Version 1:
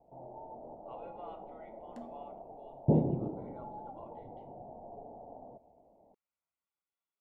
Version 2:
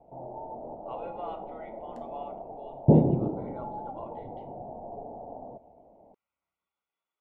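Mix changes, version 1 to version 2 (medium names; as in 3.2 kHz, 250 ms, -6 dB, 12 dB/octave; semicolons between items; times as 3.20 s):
speech +9.0 dB; first sound +7.5 dB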